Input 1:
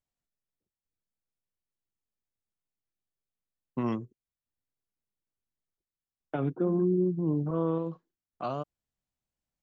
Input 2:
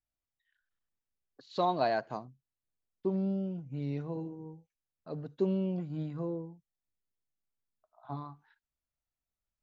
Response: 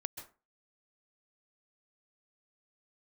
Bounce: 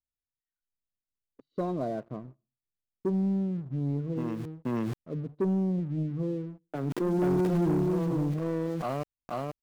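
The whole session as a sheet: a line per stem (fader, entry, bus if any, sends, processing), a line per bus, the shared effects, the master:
-4.0 dB, 0.40 s, no send, echo send -3.5 dB, local Wiener filter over 41 samples; small samples zeroed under -46 dBFS; decay stretcher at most 24 dB/s; auto duck -9 dB, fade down 0.35 s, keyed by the second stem
-1.5 dB, 0.00 s, send -15 dB, no echo send, boxcar filter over 52 samples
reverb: on, RT60 0.30 s, pre-delay 123 ms
echo: delay 482 ms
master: waveshaping leveller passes 2

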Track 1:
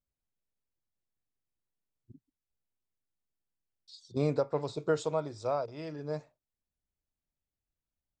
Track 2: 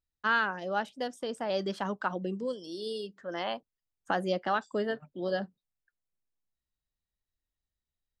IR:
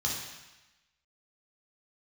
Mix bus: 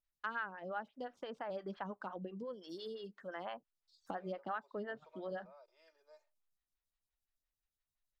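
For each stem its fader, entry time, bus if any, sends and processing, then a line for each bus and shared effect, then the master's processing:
-19.5 dB, 0.00 s, no send, steep high-pass 380 Hz 72 dB/octave; comb 3.3 ms, depth 65%; compression, threshold -30 dBFS, peak gain reduction 8 dB
+1.5 dB, 0.00 s, no send, median filter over 5 samples; treble shelf 6.3 kHz +8 dB; lamp-driven phase shifter 5.8 Hz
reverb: none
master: low-pass that closes with the level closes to 2.1 kHz, closed at -31.5 dBFS; peaking EQ 370 Hz -7.5 dB 2.4 oct; compression 2:1, threshold -43 dBFS, peak gain reduction 10 dB

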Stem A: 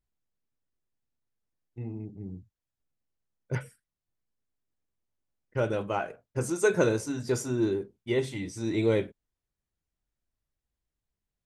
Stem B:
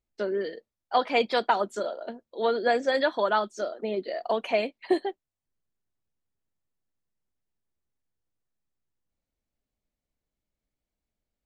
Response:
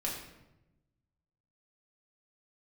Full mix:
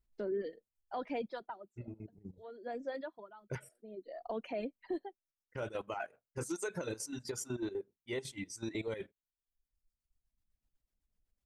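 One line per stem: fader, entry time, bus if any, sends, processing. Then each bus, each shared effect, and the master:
0.0 dB, 0.00 s, no send, bass shelf 430 Hz -7 dB; square tremolo 8 Hz, depth 60%, duty 50%
-9.0 dB, 0.00 s, no send, tilt EQ -3.5 dB/octave; auto duck -21 dB, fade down 0.60 s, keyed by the first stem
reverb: none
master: reverb removal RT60 1.3 s; peak limiter -29 dBFS, peak gain reduction 15 dB

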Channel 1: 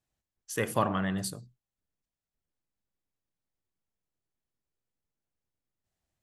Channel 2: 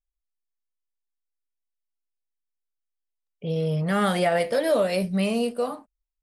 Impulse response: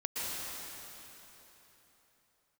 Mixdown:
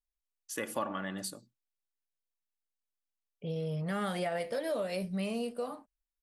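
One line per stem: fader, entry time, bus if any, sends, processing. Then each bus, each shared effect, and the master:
-3.0 dB, 0.00 s, no send, high-pass 200 Hz 12 dB/octave; expander -55 dBFS; comb 3.5 ms, depth 48%
-7.0 dB, 0.00 s, no send, none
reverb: none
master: compression 2:1, threshold -34 dBFS, peak gain reduction 6.5 dB

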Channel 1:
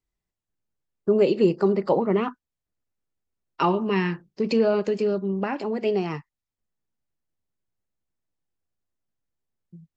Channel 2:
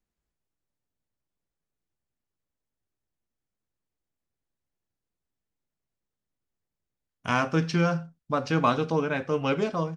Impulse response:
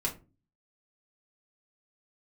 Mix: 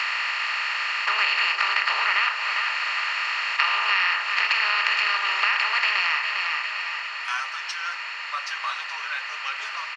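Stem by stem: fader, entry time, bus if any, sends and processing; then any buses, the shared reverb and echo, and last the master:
+1.5 dB, 0.00 s, send -17 dB, echo send -9.5 dB, spectral levelling over time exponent 0.2; peaking EQ 2.4 kHz +13.5 dB 1.5 oct; auto duck -16 dB, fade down 1.40 s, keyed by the second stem
+2.0 dB, 0.00 s, no send, no echo send, resonant low shelf 170 Hz +10.5 dB, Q 3; comb 5.2 ms; peak limiter -13.5 dBFS, peak gain reduction 6 dB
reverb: on, RT60 0.30 s, pre-delay 3 ms
echo: feedback delay 402 ms, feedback 43%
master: high-pass 1.2 kHz 24 dB/octave; compression 2.5:1, threshold -22 dBFS, peak gain reduction 9 dB

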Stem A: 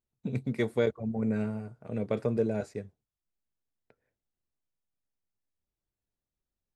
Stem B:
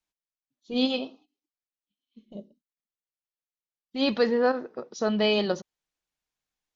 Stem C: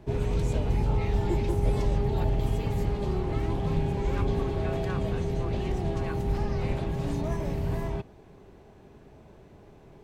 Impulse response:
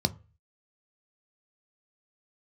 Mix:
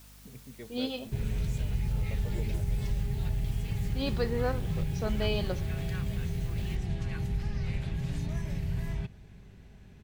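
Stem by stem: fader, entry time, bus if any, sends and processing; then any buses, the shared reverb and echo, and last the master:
-17.0 dB, 0.00 s, no send, none
-8.5 dB, 0.00 s, no send, word length cut 8-bit, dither triangular
+1.5 dB, 1.05 s, no send, high-order bell 550 Hz -12 dB 2.6 oct; compression 2:1, threshold -32 dBFS, peak gain reduction 7 dB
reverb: none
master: hum 50 Hz, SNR 23 dB

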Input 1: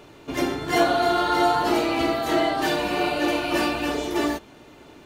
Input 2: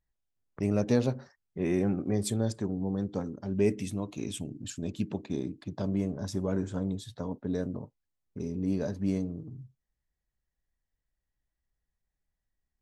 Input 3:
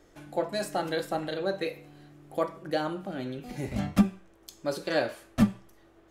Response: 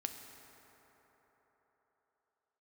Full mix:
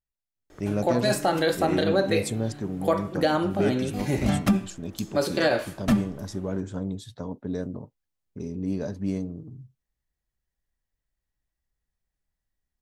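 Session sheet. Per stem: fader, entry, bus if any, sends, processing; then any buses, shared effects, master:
mute
-10.0 dB, 0.00 s, bus A, no send, none
-2.0 dB, 0.50 s, bus A, no send, none
bus A: 0.0 dB, level rider gain up to 11 dB; peak limiter -12 dBFS, peak gain reduction 8.5 dB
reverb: none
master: none

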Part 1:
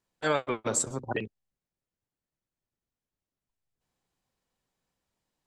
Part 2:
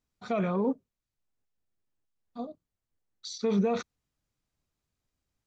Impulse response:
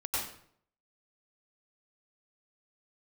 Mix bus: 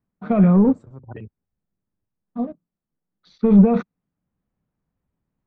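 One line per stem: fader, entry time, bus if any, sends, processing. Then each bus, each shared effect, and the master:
-4.0 dB, 0.00 s, no send, peaking EQ 91 Hz +7 dB 2 oct; auto duck -13 dB, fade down 0.25 s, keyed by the second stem
+2.5 dB, 0.00 s, no send, level-controlled noise filter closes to 2.4 kHz, open at -26.5 dBFS; resonant low shelf 120 Hz -14 dB, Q 3; waveshaping leveller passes 1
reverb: none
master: low-pass 1.8 kHz 12 dB/octave; bass shelf 150 Hz +11 dB

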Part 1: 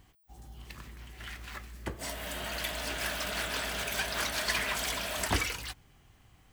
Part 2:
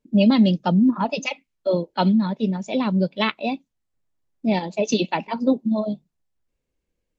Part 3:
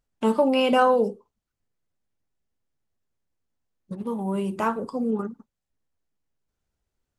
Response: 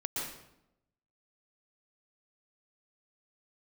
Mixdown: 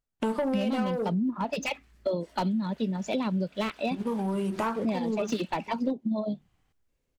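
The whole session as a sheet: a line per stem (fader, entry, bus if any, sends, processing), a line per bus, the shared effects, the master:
-11.0 dB, 0.20 s, no send, treble shelf 11 kHz -12 dB; compression 2:1, threshold -46 dBFS, peak gain reduction 12.5 dB
+1.0 dB, 0.40 s, no send, slew-rate limiter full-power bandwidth 130 Hz
-4.0 dB, 0.00 s, no send, waveshaping leveller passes 2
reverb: none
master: compression 6:1, threshold -26 dBFS, peak gain reduction 16 dB

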